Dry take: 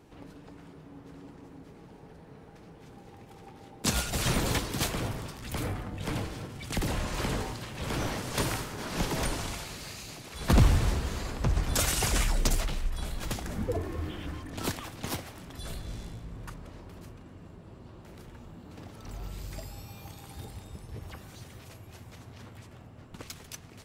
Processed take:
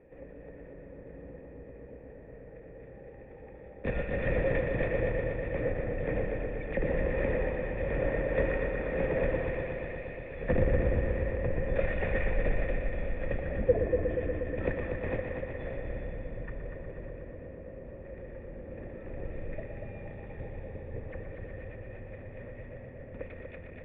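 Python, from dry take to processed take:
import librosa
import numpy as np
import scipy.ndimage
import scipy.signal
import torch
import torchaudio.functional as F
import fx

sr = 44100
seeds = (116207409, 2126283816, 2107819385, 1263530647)

p1 = fx.octave_divider(x, sr, octaves=2, level_db=1.0)
p2 = scipy.signal.sosfilt(scipy.signal.butter(2, 3500.0, 'lowpass', fs=sr, output='sos'), p1)
p3 = fx.low_shelf(p2, sr, hz=200.0, db=4.0)
p4 = fx.rider(p3, sr, range_db=4, speed_s=2.0)
p5 = p3 + (p4 * librosa.db_to_amplitude(-0.5))
p6 = 10.0 ** (-8.0 / 20.0) * np.tanh(p5 / 10.0 ** (-8.0 / 20.0))
p7 = fx.formant_cascade(p6, sr, vowel='e')
p8 = p7 + fx.echo_heads(p7, sr, ms=120, heads='first and second', feedback_pct=70, wet_db=-8.5, dry=0)
y = p8 * librosa.db_to_amplitude(6.0)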